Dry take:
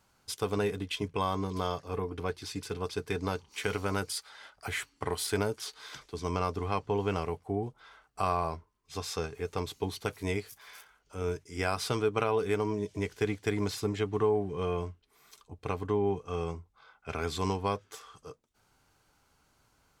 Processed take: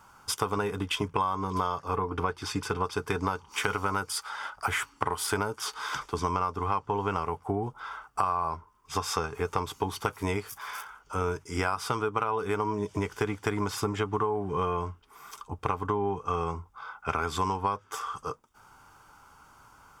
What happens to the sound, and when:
1.95–2.92 high shelf 8000 Hz -7 dB
whole clip: band shelf 1100 Hz +10 dB 1 oct; notch 4100 Hz, Q 5.8; compressor 6:1, threshold -34 dBFS; gain +8.5 dB

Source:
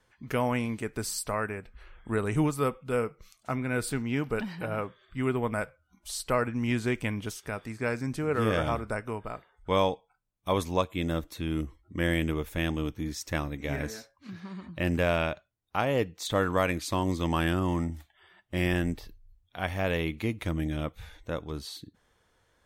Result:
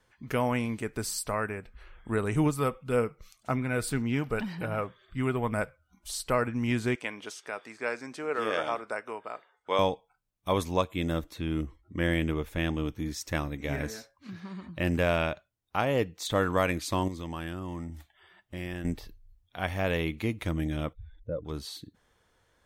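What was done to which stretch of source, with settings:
2.46–6.15 phaser 1.9 Hz, delay 1.8 ms, feedback 26%
6.95–9.79 BPF 430–7700 Hz
11.31–12.89 high shelf 6800 Hz -7.5 dB
17.08–18.85 compressor 2:1, threshold -40 dBFS
20.93–21.45 spectral contrast raised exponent 2.3

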